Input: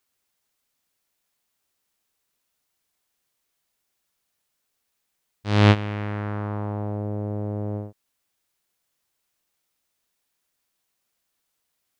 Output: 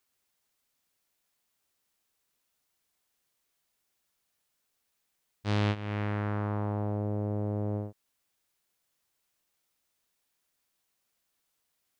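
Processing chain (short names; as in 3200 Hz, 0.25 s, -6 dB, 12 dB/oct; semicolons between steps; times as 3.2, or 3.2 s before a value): compressor 6:1, threshold -24 dBFS, peak gain reduction 12.5 dB; gain -2 dB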